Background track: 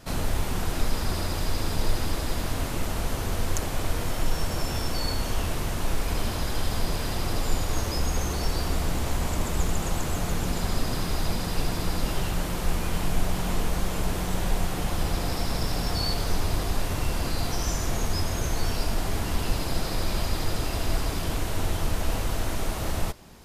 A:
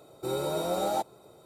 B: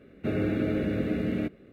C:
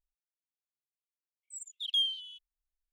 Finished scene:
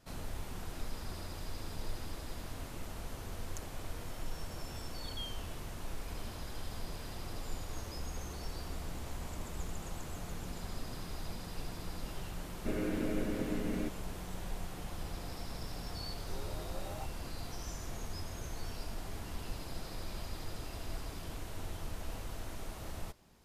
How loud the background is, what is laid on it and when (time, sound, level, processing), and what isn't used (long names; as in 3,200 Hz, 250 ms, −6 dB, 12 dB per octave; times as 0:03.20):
background track −15 dB
0:03.23: mix in C −13 dB + spectral tilt −2 dB per octave
0:12.41: mix in B −7.5 dB + high-pass filter 150 Hz
0:16.04: mix in A −18 dB